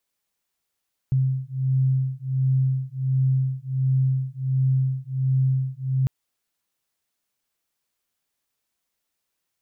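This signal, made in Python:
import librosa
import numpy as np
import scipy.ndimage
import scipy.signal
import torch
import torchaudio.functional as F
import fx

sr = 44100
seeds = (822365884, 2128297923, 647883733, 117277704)

y = fx.two_tone_beats(sr, length_s=4.95, hz=131.0, beat_hz=1.4, level_db=-22.5)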